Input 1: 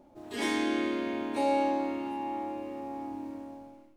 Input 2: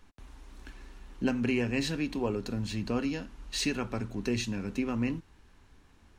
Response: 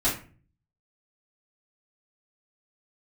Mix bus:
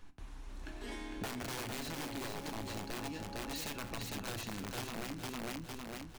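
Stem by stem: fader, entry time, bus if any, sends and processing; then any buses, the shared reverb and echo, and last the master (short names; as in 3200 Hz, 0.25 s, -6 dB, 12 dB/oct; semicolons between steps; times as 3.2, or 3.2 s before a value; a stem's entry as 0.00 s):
-1.5 dB, 0.50 s, no send, echo send -8 dB, compressor, threshold -31 dBFS, peak gain reduction 8.5 dB; auto duck -11 dB, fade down 1.35 s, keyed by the second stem
-1.0 dB, 0.00 s, send -20.5 dB, echo send -4 dB, wrapped overs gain 25 dB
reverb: on, RT60 0.40 s, pre-delay 3 ms
echo: feedback echo 0.455 s, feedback 35%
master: compressor 10:1, threshold -38 dBFS, peak gain reduction 12.5 dB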